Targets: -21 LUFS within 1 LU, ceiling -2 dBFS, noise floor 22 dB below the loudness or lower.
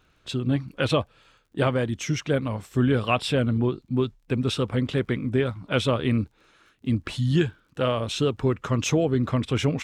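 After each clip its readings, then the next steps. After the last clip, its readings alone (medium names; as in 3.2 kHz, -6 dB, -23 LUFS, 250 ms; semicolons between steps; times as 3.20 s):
tick rate 26 per s; loudness -25.5 LUFS; peak level -11.0 dBFS; loudness target -21.0 LUFS
-> de-click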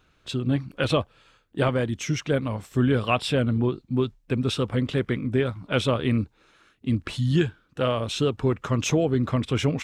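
tick rate 0.20 per s; loudness -25.5 LUFS; peak level -11.0 dBFS; loudness target -21.0 LUFS
-> trim +4.5 dB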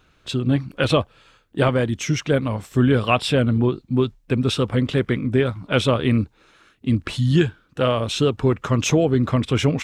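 loudness -21.0 LUFS; peak level -6.5 dBFS; noise floor -60 dBFS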